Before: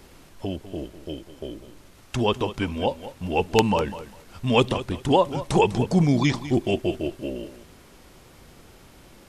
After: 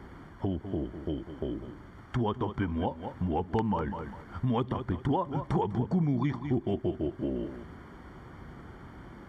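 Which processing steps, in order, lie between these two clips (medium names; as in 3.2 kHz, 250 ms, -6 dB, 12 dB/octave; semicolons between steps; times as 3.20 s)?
high-pass 48 Hz; peaking EQ 540 Hz -8.5 dB 0.84 oct; compression 3:1, threshold -35 dBFS, peak gain reduction 14.5 dB; Savitzky-Golay filter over 41 samples; trim +6 dB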